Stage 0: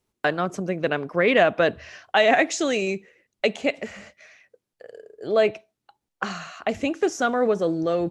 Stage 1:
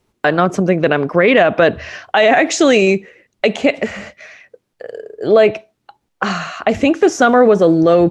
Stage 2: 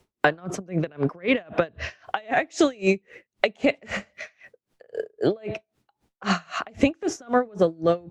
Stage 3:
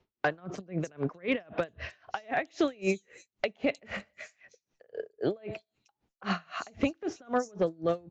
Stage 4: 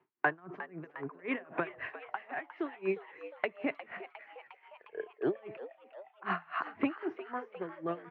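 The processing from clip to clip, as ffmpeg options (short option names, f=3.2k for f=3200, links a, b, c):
-af "highshelf=f=5k:g=-8,alimiter=level_in=14.5dB:limit=-1dB:release=50:level=0:latency=1,volume=-1dB"
-filter_complex "[0:a]acrossover=split=130[a][b];[b]acompressor=threshold=-18dB:ratio=6[c];[a][c]amix=inputs=2:normalize=0,aeval=exprs='val(0)*pow(10,-31*(0.5-0.5*cos(2*PI*3.8*n/s))/20)':c=same,volume=3dB"
-filter_complex "[0:a]aresample=16000,asoftclip=type=hard:threshold=-10dB,aresample=44100,acrossover=split=5600[a][b];[b]adelay=310[c];[a][c]amix=inputs=2:normalize=0,volume=-7.5dB"
-filter_complex "[0:a]highpass=f=150:w=0.5412,highpass=f=150:w=1.3066,equalizer=f=210:t=q:w=4:g=-9,equalizer=f=370:t=q:w=4:g=4,equalizer=f=530:t=q:w=4:g=-10,equalizer=f=1k:t=q:w=4:g=7,equalizer=f=1.7k:t=q:w=4:g=4,lowpass=f=2.4k:w=0.5412,lowpass=f=2.4k:w=1.3066,tremolo=f=0.6:d=0.71,asplit=8[a][b][c][d][e][f][g][h];[b]adelay=356,afreqshift=110,volume=-14dB[i];[c]adelay=712,afreqshift=220,volume=-18dB[j];[d]adelay=1068,afreqshift=330,volume=-22dB[k];[e]adelay=1424,afreqshift=440,volume=-26dB[l];[f]adelay=1780,afreqshift=550,volume=-30.1dB[m];[g]adelay=2136,afreqshift=660,volume=-34.1dB[n];[h]adelay=2492,afreqshift=770,volume=-38.1dB[o];[a][i][j][k][l][m][n][o]amix=inputs=8:normalize=0"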